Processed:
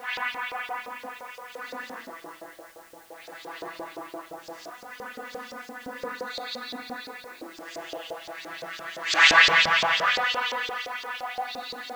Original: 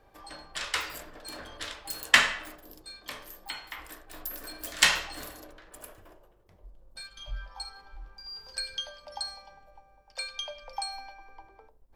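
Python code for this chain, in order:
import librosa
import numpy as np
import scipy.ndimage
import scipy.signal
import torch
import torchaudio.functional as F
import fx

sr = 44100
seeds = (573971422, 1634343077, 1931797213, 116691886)

p1 = fx.vocoder_arp(x, sr, chord='bare fifth', root=52, every_ms=329)
p2 = scipy.signal.sosfilt(scipy.signal.butter(2, 150.0, 'highpass', fs=sr, output='sos'), p1)
p3 = fx.rider(p2, sr, range_db=5, speed_s=0.5)
p4 = p2 + F.gain(torch.from_numpy(p3), -3.0).numpy()
p5 = fx.paulstretch(p4, sr, seeds[0], factor=8.2, window_s=0.05, from_s=3.71)
p6 = fx.filter_lfo_bandpass(p5, sr, shape='saw_up', hz=5.8, low_hz=490.0, high_hz=5400.0, q=2.0)
p7 = fx.dmg_noise_colour(p6, sr, seeds[1], colour='white', level_db=-64.0)
y = F.gain(torch.from_numpy(p7), 7.0).numpy()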